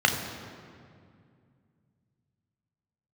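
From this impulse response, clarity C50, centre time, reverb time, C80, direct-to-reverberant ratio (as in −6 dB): 6.5 dB, 41 ms, 2.3 s, 7.5 dB, 3.0 dB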